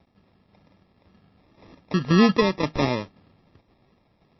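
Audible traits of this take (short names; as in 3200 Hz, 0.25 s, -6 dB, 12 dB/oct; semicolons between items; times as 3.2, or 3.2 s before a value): aliases and images of a low sample rate 1500 Hz, jitter 0%; tremolo saw down 1.9 Hz, depth 50%; a quantiser's noise floor 12-bit, dither none; MP3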